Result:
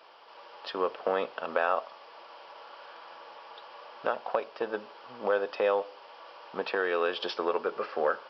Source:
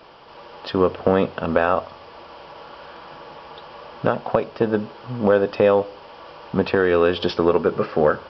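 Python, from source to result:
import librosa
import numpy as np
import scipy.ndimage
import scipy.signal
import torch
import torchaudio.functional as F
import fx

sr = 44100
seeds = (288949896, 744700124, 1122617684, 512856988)

y = scipy.signal.sosfilt(scipy.signal.butter(2, 560.0, 'highpass', fs=sr, output='sos'), x)
y = y * librosa.db_to_amplitude(-6.5)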